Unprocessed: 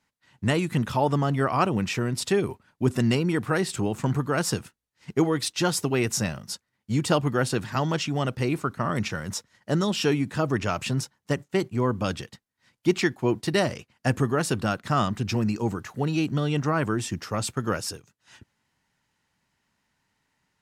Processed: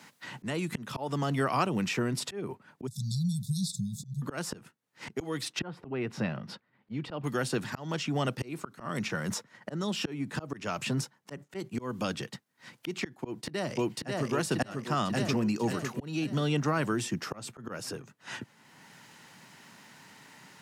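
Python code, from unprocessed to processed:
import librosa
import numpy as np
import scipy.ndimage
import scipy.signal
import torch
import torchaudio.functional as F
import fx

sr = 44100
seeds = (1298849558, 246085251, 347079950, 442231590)

y = fx.brickwall_bandstop(x, sr, low_hz=200.0, high_hz=3400.0, at=(2.87, 4.22))
y = fx.air_absorb(y, sr, metres=410.0, at=(5.59, 7.24))
y = fx.echo_throw(y, sr, start_s=13.23, length_s=1.06, ms=540, feedback_pct=50, wet_db=-0.5)
y = scipy.signal.sosfilt(scipy.signal.butter(4, 130.0, 'highpass', fs=sr, output='sos'), y)
y = fx.auto_swell(y, sr, attack_ms=565.0)
y = fx.band_squash(y, sr, depth_pct=70)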